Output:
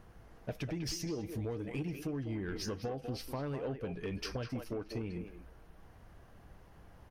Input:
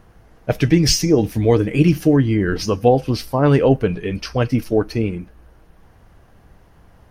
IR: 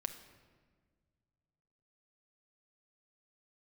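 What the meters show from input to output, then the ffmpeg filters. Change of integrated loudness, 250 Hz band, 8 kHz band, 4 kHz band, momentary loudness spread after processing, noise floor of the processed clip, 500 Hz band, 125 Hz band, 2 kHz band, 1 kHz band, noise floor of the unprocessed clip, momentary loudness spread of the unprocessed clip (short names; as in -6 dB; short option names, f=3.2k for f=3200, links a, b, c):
-22.0 dB, -22.0 dB, -20.5 dB, -19.5 dB, 21 LU, -58 dBFS, -22.5 dB, -22.0 dB, -19.5 dB, -23.0 dB, -51 dBFS, 9 LU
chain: -filter_complex "[0:a]acompressor=threshold=-25dB:ratio=16,asplit=2[a][b];[b]adelay=200,highpass=300,lowpass=3.4k,asoftclip=type=hard:threshold=-21.5dB,volume=-7dB[c];[a][c]amix=inputs=2:normalize=0,asoftclip=type=tanh:threshold=-22.5dB,volume=-7.5dB"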